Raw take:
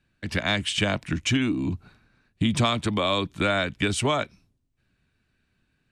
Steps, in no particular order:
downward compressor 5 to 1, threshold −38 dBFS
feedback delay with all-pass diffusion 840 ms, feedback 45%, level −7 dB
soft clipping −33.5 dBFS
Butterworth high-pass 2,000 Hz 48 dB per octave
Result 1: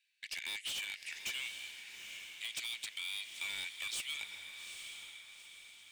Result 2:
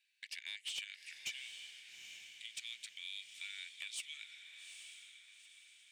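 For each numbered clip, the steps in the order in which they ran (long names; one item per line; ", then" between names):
Butterworth high-pass, then soft clipping, then downward compressor, then feedback delay with all-pass diffusion
downward compressor, then Butterworth high-pass, then soft clipping, then feedback delay with all-pass diffusion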